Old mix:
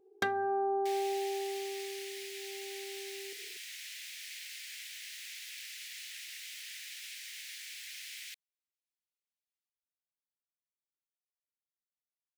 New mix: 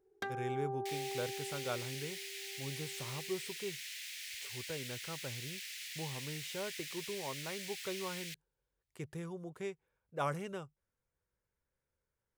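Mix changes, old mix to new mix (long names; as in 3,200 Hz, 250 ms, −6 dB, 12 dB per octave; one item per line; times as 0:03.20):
speech: unmuted
first sound −8.5 dB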